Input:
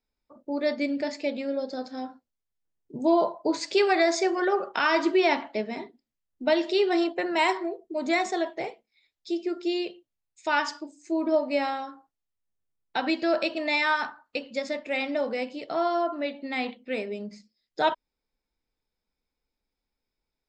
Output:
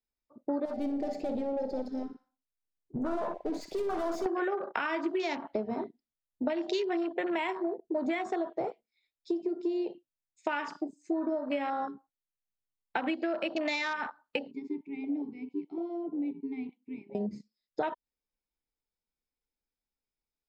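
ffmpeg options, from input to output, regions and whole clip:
ffmpeg -i in.wav -filter_complex "[0:a]asettb=1/sr,asplit=3[link_01][link_02][link_03];[link_01]atrim=end=0.654[link_04];[link_02]atrim=start=0.65:end=4.26,asetpts=PTS-STARTPTS,afade=type=in:duration=0.004:curve=qsin,afade=type=out:start_time=3.606:duration=0.004:curve=qsin,aeval=exprs='(tanh(50.1*val(0)+0.15)-tanh(0.15))/50.1':channel_layout=same,aecho=1:1:60|120|180|240:0.282|0.121|0.0521|0.0224,atrim=end_sample=159201[link_05];[link_03]atrim=start=4.256[link_06];[link_04][link_05]acrossfade=duration=0.004:curve1=hsin:curve2=qsin[link_07];[link_07][link_06]acrossfade=duration=0.004:curve1=qsin:curve2=hsin,asettb=1/sr,asplit=3[link_08][link_09][link_10];[link_08]atrim=end=14.514[link_11];[link_09]atrim=start=14.51:end=17.15,asetpts=PTS-STARTPTS,afade=type=in:duration=0.004:curve=qsin,afade=type=out:start_time=2.636:duration=0.004:curve=qsin,asplit=3[link_12][link_13][link_14];[link_12]bandpass=frequency=300:width_type=q:width=8,volume=0dB[link_15];[link_13]bandpass=frequency=870:width_type=q:width=8,volume=-6dB[link_16];[link_14]bandpass=frequency=2240:width_type=q:width=8,volume=-9dB[link_17];[link_15][link_16][link_17]amix=inputs=3:normalize=0,aemphasis=mode=production:type=50fm[link_18];[link_10]atrim=start=17.146[link_19];[link_11][link_18]acrossfade=duration=0.004:curve1=hsin:curve2=qsin[link_20];[link_20][link_19]acrossfade=duration=0.004:curve1=qsin:curve2=hsin,acrossover=split=350|3000[link_21][link_22][link_23];[link_22]acompressor=threshold=-28dB:ratio=2.5[link_24];[link_21][link_24][link_23]amix=inputs=3:normalize=0,afwtdn=0.0178,acompressor=threshold=-34dB:ratio=12,volume=6dB" out.wav

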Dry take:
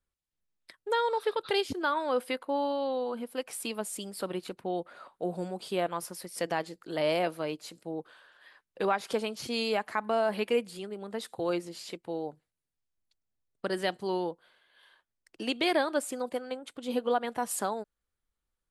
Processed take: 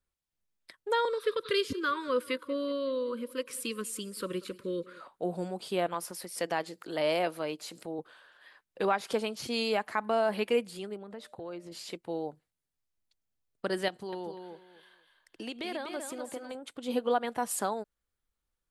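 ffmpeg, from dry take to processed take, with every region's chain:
ffmpeg -i in.wav -filter_complex "[0:a]asettb=1/sr,asplit=3[link_01][link_02][link_03];[link_01]atrim=end=1.054[link_04];[link_02]atrim=start=1.05:end=5.01,asetpts=PTS-STARTPTS,afade=type=in:duration=0.004:curve=qsin,afade=type=out:start_time=3.956:duration=0.004:curve=qsin,asuperstop=centerf=750:order=12:qfactor=1.8,aecho=1:1:187|374|561|748:0.0891|0.0455|0.0232|0.0118,atrim=end_sample=174636[link_05];[link_03]atrim=start=5.006[link_06];[link_04][link_05]acrossfade=duration=0.004:curve1=hsin:curve2=qsin[link_07];[link_07][link_06]acrossfade=duration=0.004:curve1=qsin:curve2=hsin,asettb=1/sr,asplit=3[link_08][link_09][link_10];[link_08]atrim=end=5.944[link_11];[link_09]atrim=start=5.94:end=7.99,asetpts=PTS-STARTPTS,afade=type=in:duration=0.004:curve=qsin,afade=type=out:start_time=2.046:duration=0.004:curve=qsin,highpass=53,lowshelf=frequency=160:gain=-8,acompressor=mode=upward:threshold=-36dB:ratio=2.5:attack=3.2:release=140:knee=2.83:detection=peak[link_12];[link_10]atrim=start=7.986[link_13];[link_11][link_12]acrossfade=duration=0.004:curve1=hsin:curve2=qsin[link_14];[link_14][link_13]acrossfade=duration=0.004:curve1=qsin:curve2=hsin,asettb=1/sr,asplit=3[link_15][link_16][link_17];[link_15]atrim=end=10.964[link_18];[link_16]atrim=start=10.96:end=11.72,asetpts=PTS-STARTPTS,afade=type=in:duration=0.004:curve=qsin,afade=type=out:start_time=0.756:duration=0.004:curve=qsin,highshelf=frequency=4100:gain=-10.5,acompressor=threshold=-42dB:ratio=2.5:attack=3.2:release=140:knee=1:detection=peak,aeval=exprs='val(0)+0.000794*sin(2*PI*600*n/s)':channel_layout=same[link_19];[link_17]atrim=start=11.716[link_20];[link_18][link_19]acrossfade=duration=0.004:curve1=hsin:curve2=qsin[link_21];[link_21][link_20]acrossfade=duration=0.004:curve1=qsin:curve2=hsin,asettb=1/sr,asplit=3[link_22][link_23][link_24];[link_22]atrim=end=13.884[link_25];[link_23]atrim=start=13.88:end=16.55,asetpts=PTS-STARTPTS,afade=type=in:duration=0.004:curve=qsin,afade=type=out:start_time=2.666:duration=0.004:curve=qsin,acompressor=threshold=-38dB:ratio=2.5:attack=3.2:release=140:knee=1:detection=peak,aecho=1:1:245|490|735:0.473|0.104|0.0229,atrim=end_sample=117747[link_26];[link_24]atrim=start=16.546[link_27];[link_25][link_26]acrossfade=duration=0.004:curve1=hsin:curve2=qsin[link_28];[link_28][link_27]acrossfade=duration=0.004:curve1=qsin:curve2=hsin" out.wav

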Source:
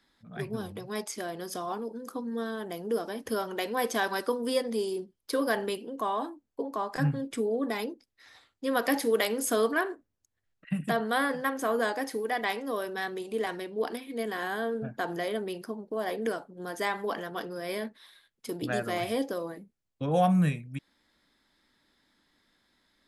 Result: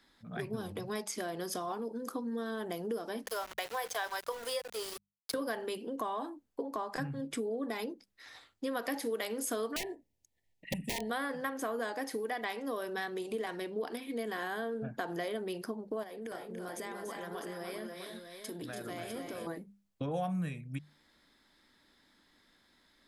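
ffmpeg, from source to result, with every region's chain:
ffmpeg -i in.wav -filter_complex "[0:a]asettb=1/sr,asplit=3[link_01][link_02][link_03];[link_01]atrim=end=3.264[link_04];[link_02]atrim=start=3.26:end=5.34,asetpts=PTS-STARTPTS,afade=type=in:duration=0.004:curve=qsin,afade=type=out:start_time=2.076:duration=0.004:curve=qsin,highpass=frequency=520:width=0.5412,highpass=frequency=520:width=1.3066,aeval=exprs='val(0)*gte(abs(val(0)),0.0112)':channel_layout=same[link_05];[link_03]atrim=start=5.336[link_06];[link_04][link_05]acrossfade=duration=0.004:curve1=hsin:curve2=qsin[link_07];[link_07][link_06]acrossfade=duration=0.004:curve1=qsin:curve2=hsin,asettb=1/sr,asplit=3[link_08][link_09][link_10];[link_08]atrim=end=9.764[link_11];[link_09]atrim=start=9.76:end=11.1,asetpts=PTS-STARTPTS,afade=type=in:duration=0.004:curve=qsin,afade=type=out:start_time=1.336:duration=0.004:curve=qsin,aeval=exprs='(mod(13.3*val(0)+1,2)-1)/13.3':channel_layout=same,asuperstop=centerf=1300:order=20:qfactor=1.7[link_12];[link_10]atrim=start=11.096[link_13];[link_11][link_12]acrossfade=duration=0.004:curve1=hsin:curve2=qsin[link_14];[link_14][link_13]acrossfade=duration=0.004:curve1=qsin:curve2=hsin,asettb=1/sr,asplit=3[link_15][link_16][link_17];[link_15]atrim=end=16.034[link_18];[link_16]atrim=start=16.03:end=19.47,asetpts=PTS-STARTPTS,afade=type=in:duration=0.004:curve=qsin,afade=type=out:start_time=3.436:duration=0.004:curve=qsin,equalizer=frequency=9400:width_type=o:width=0.83:gain=4.5,acompressor=threshold=-42dB:ratio=6:attack=3.2:release=140:knee=1:detection=peak,aecho=1:1:288|319|654:0.447|0.398|0.398,atrim=end_sample=151704[link_19];[link_17]atrim=start=19.466[link_20];[link_18][link_19]acrossfade=duration=0.004:curve1=hsin:curve2=qsin[link_21];[link_21][link_20]acrossfade=duration=0.004:curve1=qsin:curve2=hsin,acompressor=threshold=-37dB:ratio=4,bandreject=frequency=50:width_type=h:width=6,bandreject=frequency=100:width_type=h:width=6,bandreject=frequency=150:width_type=h:width=6,bandreject=frequency=200:width_type=h:width=6,volume=2.5dB" out.wav

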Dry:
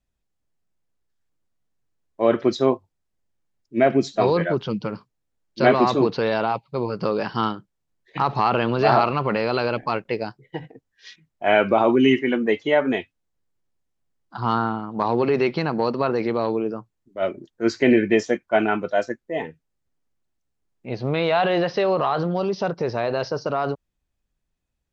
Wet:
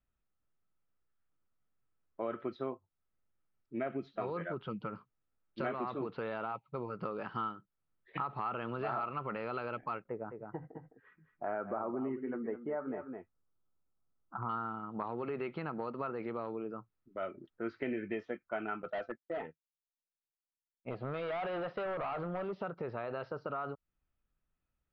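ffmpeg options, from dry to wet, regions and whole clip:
ffmpeg -i in.wav -filter_complex "[0:a]asettb=1/sr,asplit=3[link_01][link_02][link_03];[link_01]atrim=end=10.084[link_04];[link_02]atrim=start=10.08:end=14.49,asetpts=PTS-STARTPTS,afade=type=in:duration=0.004:curve=qsin,afade=type=out:start_time=4.406:duration=0.004:curve=qsin,lowpass=frequency=1400:width=0.5412,lowpass=frequency=1400:width=1.3066,aecho=1:1:210:0.282,atrim=end_sample=194481[link_05];[link_03]atrim=start=14.486[link_06];[link_04][link_05]acrossfade=duration=0.004:curve1=hsin:curve2=qsin[link_07];[link_07][link_06]acrossfade=duration=0.004:curve1=qsin:curve2=hsin,asettb=1/sr,asplit=3[link_08][link_09][link_10];[link_08]atrim=end=18.824[link_11];[link_09]atrim=start=18.82:end=22.61,asetpts=PTS-STARTPTS,afade=type=in:duration=0.004:curve=qsin,afade=type=out:start_time=3.786:duration=0.004:curve=qsin,agate=range=-33dB:threshold=-34dB:ratio=3:release=100:detection=peak,equalizer=frequency=660:width=1.8:gain=6.5,volume=18.5dB,asoftclip=hard,volume=-18.5dB[link_12];[link_10]atrim=start=22.606[link_13];[link_11][link_12]acrossfade=duration=0.004:curve1=hsin:curve2=qsin[link_14];[link_14][link_13]acrossfade=duration=0.004:curve1=qsin:curve2=hsin,lowpass=frequency=3100:width=0.5412,lowpass=frequency=3100:width=1.3066,equalizer=frequency=1300:width=6.1:gain=11.5,acompressor=threshold=-33dB:ratio=3,volume=-6dB" out.wav

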